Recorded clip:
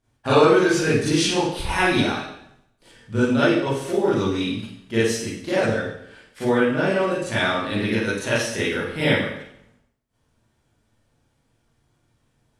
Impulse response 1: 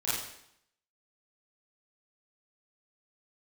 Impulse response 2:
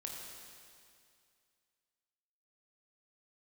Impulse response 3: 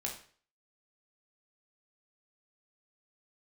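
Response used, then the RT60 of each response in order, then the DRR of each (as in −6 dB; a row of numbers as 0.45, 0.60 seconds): 1; 0.75, 2.3, 0.45 seconds; −11.0, −1.0, −0.5 decibels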